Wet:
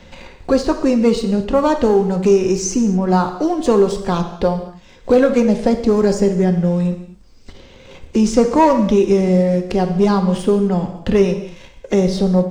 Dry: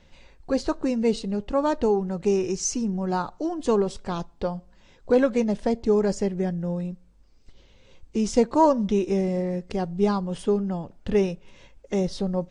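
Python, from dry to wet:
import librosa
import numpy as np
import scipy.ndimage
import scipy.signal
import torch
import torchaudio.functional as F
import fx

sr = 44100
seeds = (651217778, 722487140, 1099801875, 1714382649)

y = fx.leveller(x, sr, passes=1)
y = fx.rev_gated(y, sr, seeds[0], gate_ms=270, shape='falling', drr_db=6.0)
y = fx.band_squash(y, sr, depth_pct=40)
y = y * 10.0 ** (4.5 / 20.0)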